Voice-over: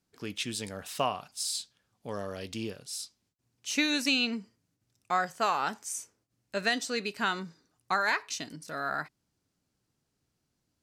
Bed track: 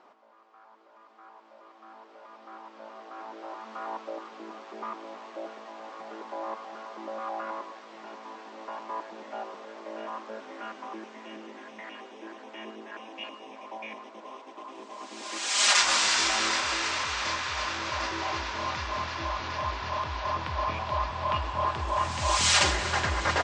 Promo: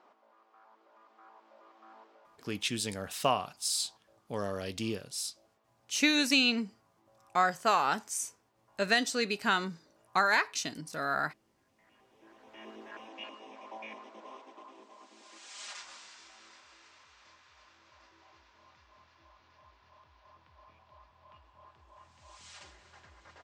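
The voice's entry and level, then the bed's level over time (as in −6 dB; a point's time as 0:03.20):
2.25 s, +1.5 dB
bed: 0:02.01 −5.5 dB
0:02.88 −29.5 dB
0:11.67 −29.5 dB
0:12.75 −5 dB
0:14.37 −5 dB
0:16.19 −30 dB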